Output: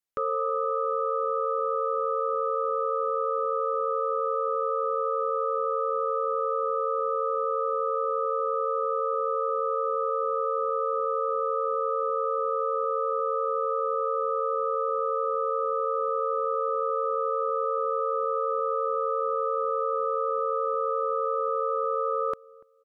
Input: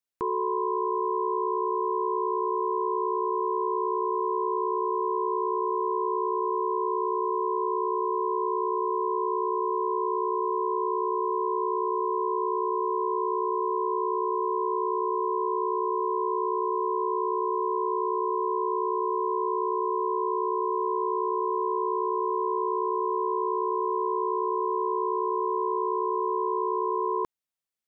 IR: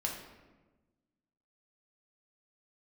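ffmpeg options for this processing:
-filter_complex "[0:a]asetrate=53802,aresample=44100,asplit=2[link_01][link_02];[link_02]adelay=290,lowpass=frequency=840:poles=1,volume=-22dB,asplit=2[link_03][link_04];[link_04]adelay=290,lowpass=frequency=840:poles=1,volume=0.35[link_05];[link_03][link_05]amix=inputs=2:normalize=0[link_06];[link_01][link_06]amix=inputs=2:normalize=0"

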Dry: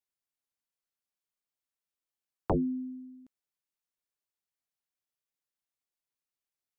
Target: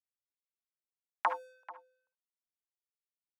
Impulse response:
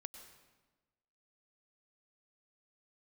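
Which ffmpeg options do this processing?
-filter_complex "[0:a]acompressor=threshold=-29dB:ratio=6,aeval=exprs='sgn(val(0))*max(abs(val(0))-0.00119,0)':channel_layout=same,highpass=frequency=480:width_type=q:width=5.5,asplit=2[link_01][link_02];[link_02]adelay=874.6,volume=-17dB,highshelf=frequency=4000:gain=-19.7[link_03];[link_01][link_03]amix=inputs=2:normalize=0[link_04];[1:a]atrim=start_sample=2205,atrim=end_sample=6174,asetrate=38808,aresample=44100[link_05];[link_04][link_05]afir=irnorm=-1:irlink=0,asetrate=88200,aresample=44100,volume=3.5dB"

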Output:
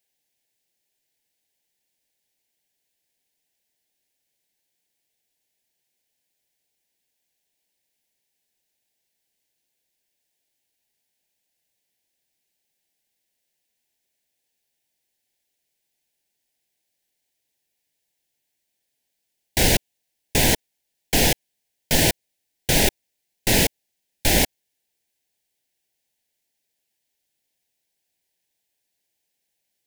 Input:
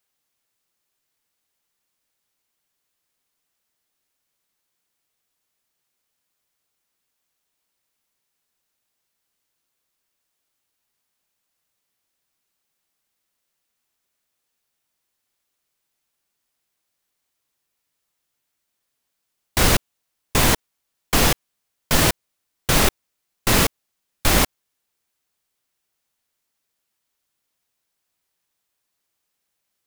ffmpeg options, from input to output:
ffmpeg -i in.wav -af "asuperstop=centerf=1200:order=4:qfactor=1.5,lowshelf=frequency=160:gain=-3" out.wav

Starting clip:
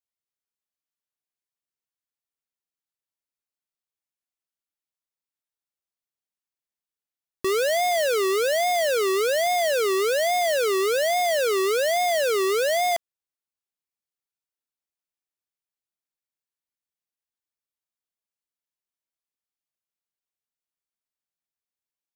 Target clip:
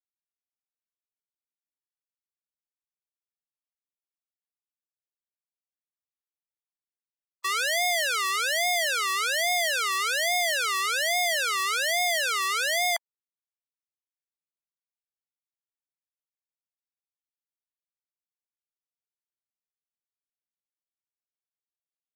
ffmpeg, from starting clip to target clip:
ffmpeg -i in.wav -af "afftfilt=real='re*gte(hypot(re,im),0.0158)':imag='im*gte(hypot(re,im),0.0158)':win_size=1024:overlap=0.75,highpass=frequency=910:width=0.5412,highpass=frequency=910:width=1.3066,volume=3dB" out.wav

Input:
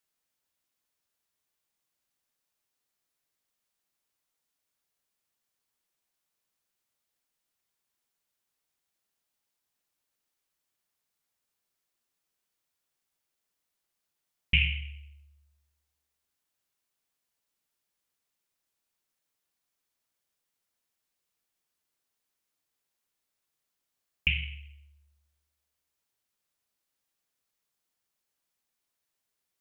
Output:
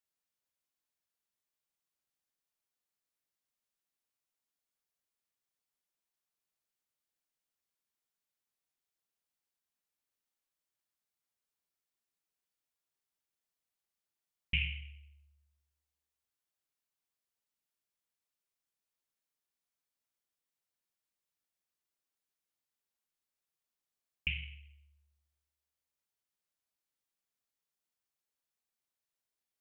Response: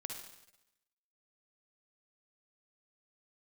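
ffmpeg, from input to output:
-af "volume=-8.5dB"

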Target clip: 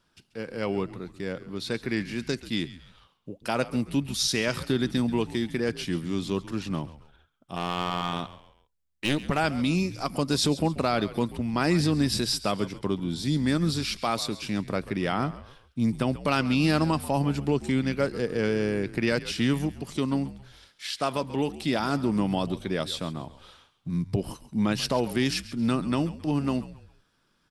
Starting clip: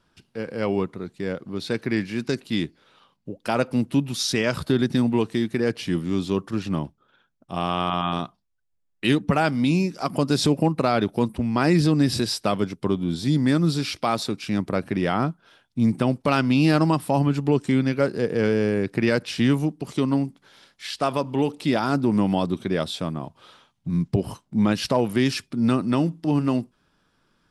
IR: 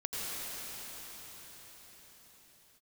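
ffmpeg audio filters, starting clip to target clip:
-filter_complex "[0:a]highshelf=frequency=2100:gain=5.5,asettb=1/sr,asplit=3[link_01][link_02][link_03];[link_01]atrim=end=7.564[link_04];[link_02]atrim=start=7.56:end=9.39,asetpts=PTS-STARTPTS,afade=type=in:duration=0.004:curve=qsin,afade=type=out:start_time=1.826:duration=0.004:curve=qsin,aeval=exprs='clip(val(0),-1,0.0708)':channel_layout=same[link_05];[link_03]atrim=start=9.386[link_06];[link_04][link_05]acrossfade=duration=0.004:curve1=hsin:curve2=qsin[link_07];[link_07][link_06]acrossfade=duration=0.004:curve1=qsin:curve2=hsin,asplit=4[link_08][link_09][link_10][link_11];[link_09]adelay=136,afreqshift=-76,volume=-16dB[link_12];[link_10]adelay=272,afreqshift=-152,volume=-24.4dB[link_13];[link_11]adelay=408,afreqshift=-228,volume=-32.8dB[link_14];[link_08][link_12][link_13][link_14]amix=inputs=4:normalize=0,volume=-5dB"

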